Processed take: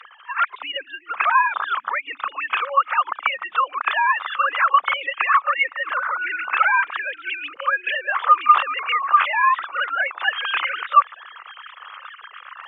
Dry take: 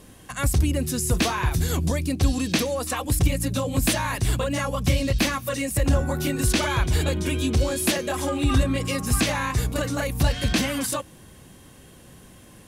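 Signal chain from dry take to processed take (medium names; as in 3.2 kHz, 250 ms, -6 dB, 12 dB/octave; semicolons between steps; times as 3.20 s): formants replaced by sine waves; reverse; upward compressor, threshold -33 dBFS; reverse; ladder high-pass 1.1 kHz, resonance 65%; reverse echo 31 ms -18.5 dB; loudness maximiser +15.5 dB; trim -2 dB; Opus 48 kbps 48 kHz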